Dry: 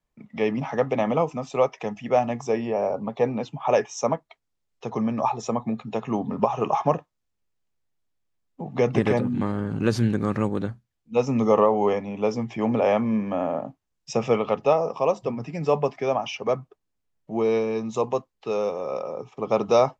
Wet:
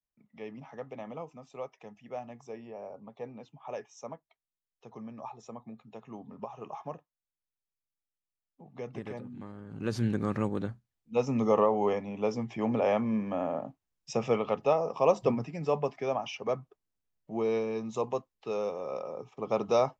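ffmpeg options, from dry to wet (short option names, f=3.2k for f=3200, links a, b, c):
-af "volume=1.5dB,afade=t=in:st=9.66:d=0.45:silence=0.237137,afade=t=in:st=14.88:d=0.43:silence=0.421697,afade=t=out:st=15.31:d=0.19:silence=0.375837"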